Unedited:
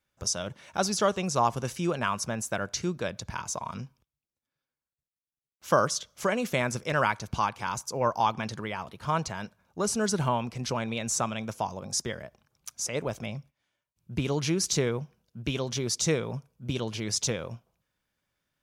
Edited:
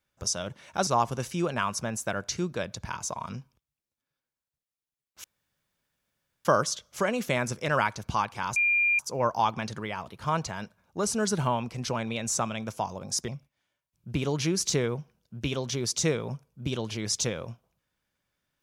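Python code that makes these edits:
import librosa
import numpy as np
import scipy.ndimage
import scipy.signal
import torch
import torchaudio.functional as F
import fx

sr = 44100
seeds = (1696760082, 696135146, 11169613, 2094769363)

y = fx.edit(x, sr, fx.cut(start_s=0.87, length_s=0.45),
    fx.insert_room_tone(at_s=5.69, length_s=1.21),
    fx.insert_tone(at_s=7.8, length_s=0.43, hz=2400.0, db=-20.5),
    fx.cut(start_s=12.09, length_s=1.22), tone=tone)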